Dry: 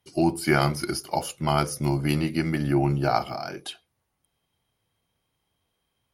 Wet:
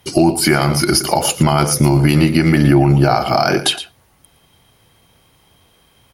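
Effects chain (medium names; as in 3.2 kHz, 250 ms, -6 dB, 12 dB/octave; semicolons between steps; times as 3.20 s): compression 6:1, threshold -30 dBFS, peak gain reduction 13.5 dB; on a send: delay 115 ms -14.5 dB; on the sum: loudness maximiser +23.5 dB; trim -1 dB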